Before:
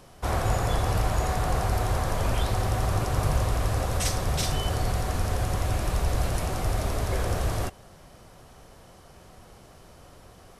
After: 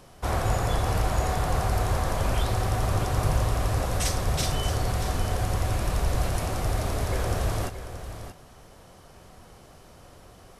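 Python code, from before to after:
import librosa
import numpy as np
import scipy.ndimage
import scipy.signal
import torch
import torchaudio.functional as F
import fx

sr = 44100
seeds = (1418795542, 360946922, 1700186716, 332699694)

y = x + 10.0 ** (-11.0 / 20.0) * np.pad(x, (int(628 * sr / 1000.0), 0))[:len(x)]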